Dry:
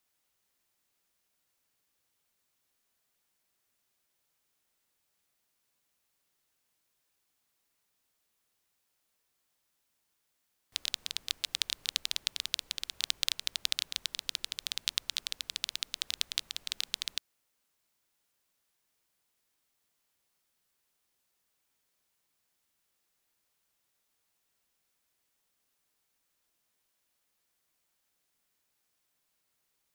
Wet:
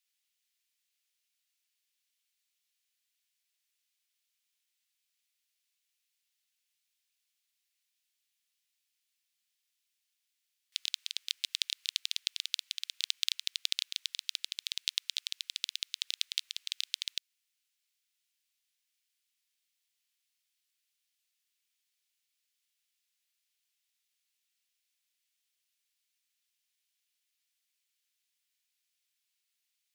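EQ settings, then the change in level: ladder high-pass 1.9 kHz, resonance 20%; treble shelf 7.7 kHz -5.5 dB; +4.5 dB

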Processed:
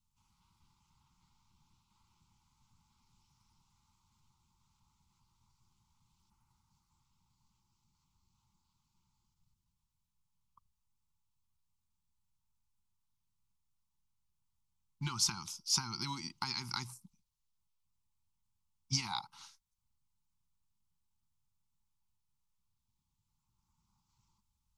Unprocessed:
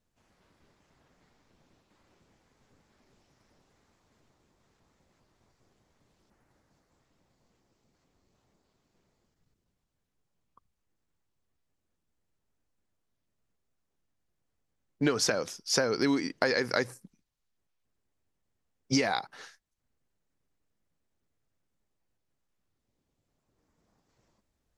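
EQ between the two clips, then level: Chebyshev band-stop 340–860 Hz, order 4; static phaser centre 720 Hz, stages 4; 0.0 dB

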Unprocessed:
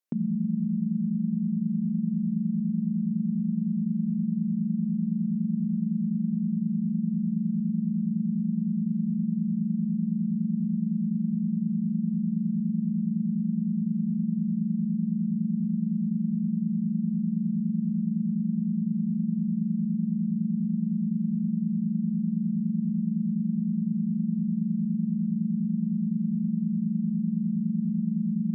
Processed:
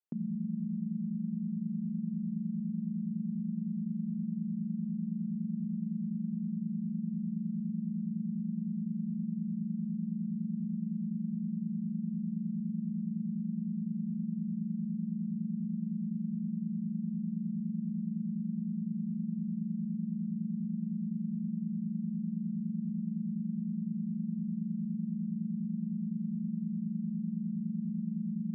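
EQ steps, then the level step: distance through air 450 m; -7.5 dB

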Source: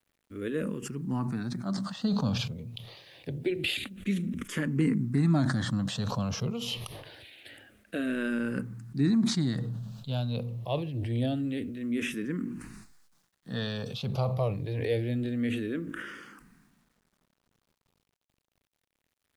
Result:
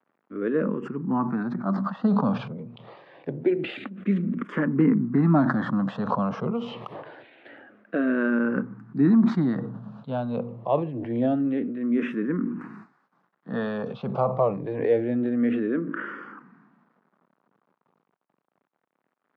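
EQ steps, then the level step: high-pass 170 Hz 24 dB/octave; resonant low-pass 1.2 kHz, resonance Q 1.6; +7.0 dB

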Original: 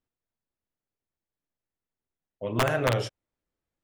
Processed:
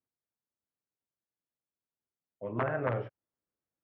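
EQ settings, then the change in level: high-pass 92 Hz 12 dB/octave; low-pass 1.9 kHz 24 dB/octave; -6.0 dB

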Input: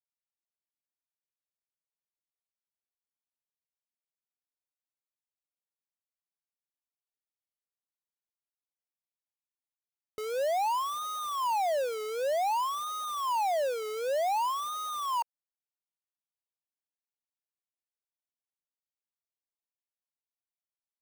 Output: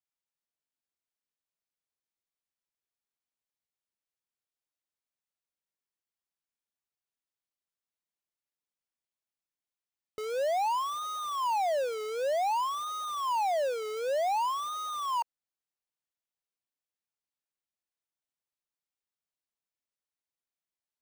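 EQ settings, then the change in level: peaking EQ 16 kHz -9.5 dB 0.69 oct; 0.0 dB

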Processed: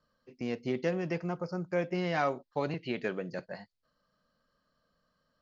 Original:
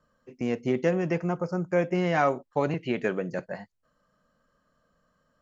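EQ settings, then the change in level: resonant low-pass 4.6 kHz, resonance Q 3.5; -6.5 dB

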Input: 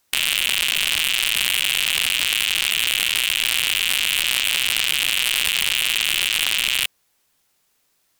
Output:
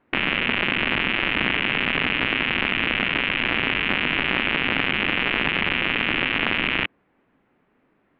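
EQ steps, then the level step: low-pass 2.3 kHz 24 dB/octave; distance through air 220 m; peaking EQ 260 Hz +13 dB 1.6 oct; +7.0 dB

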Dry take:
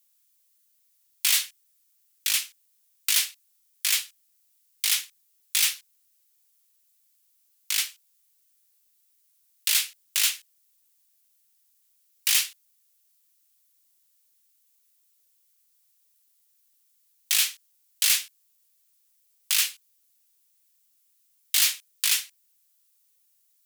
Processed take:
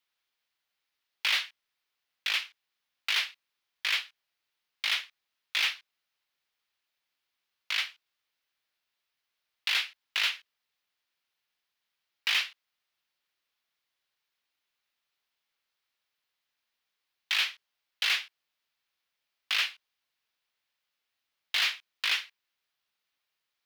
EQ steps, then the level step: distance through air 330 m; +6.0 dB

